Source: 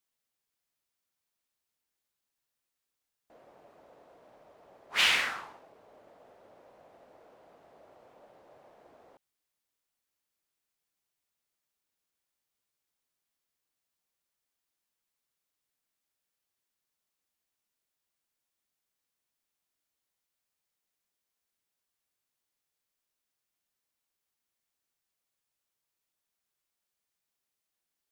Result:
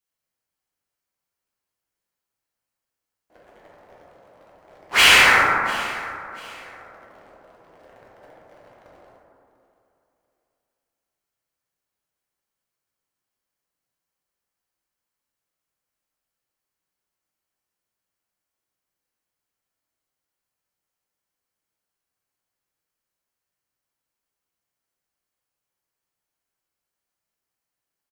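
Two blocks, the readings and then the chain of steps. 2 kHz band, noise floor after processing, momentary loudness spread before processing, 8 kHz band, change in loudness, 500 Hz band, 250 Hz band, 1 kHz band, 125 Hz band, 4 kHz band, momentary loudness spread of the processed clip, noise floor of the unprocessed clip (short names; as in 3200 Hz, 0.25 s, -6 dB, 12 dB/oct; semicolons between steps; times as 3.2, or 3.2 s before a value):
+15.5 dB, under -85 dBFS, 13 LU, +15.0 dB, +12.0 dB, +17.0 dB, +18.0 dB, +19.0 dB, +20.5 dB, +12.0 dB, 21 LU, under -85 dBFS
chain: notch 3600 Hz, Q 16; sample leveller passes 3; feedback echo 0.693 s, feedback 29%, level -19 dB; plate-style reverb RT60 2.4 s, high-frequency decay 0.25×, DRR -5.5 dB; gain +2.5 dB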